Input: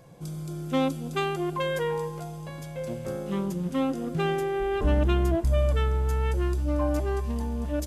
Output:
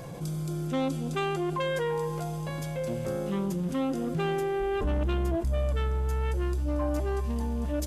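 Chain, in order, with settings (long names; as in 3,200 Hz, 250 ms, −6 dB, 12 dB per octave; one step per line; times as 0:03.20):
0:00.67–0:01.88: low-pass filter 11,000 Hz 12 dB per octave
soft clipping −16.5 dBFS, distortion −21 dB
envelope flattener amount 50%
level −4 dB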